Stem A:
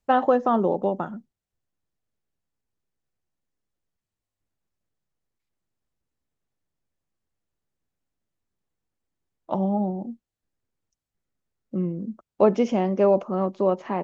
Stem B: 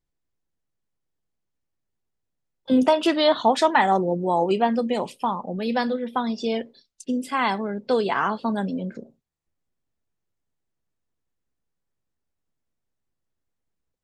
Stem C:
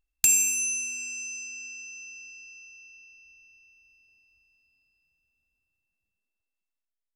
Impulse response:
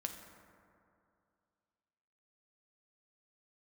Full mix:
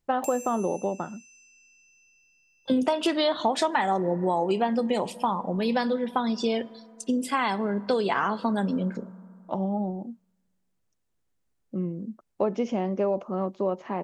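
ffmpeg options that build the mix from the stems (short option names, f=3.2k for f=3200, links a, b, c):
-filter_complex "[0:a]volume=-3.5dB[a];[1:a]equalizer=f=8.6k:t=o:w=0.82:g=3,volume=0.5dB,asplit=2[b][c];[c]volume=-14dB[d];[2:a]volume=-18.5dB[e];[3:a]atrim=start_sample=2205[f];[d][f]afir=irnorm=-1:irlink=0[g];[a][b][e][g]amix=inputs=4:normalize=0,acompressor=threshold=-21dB:ratio=5"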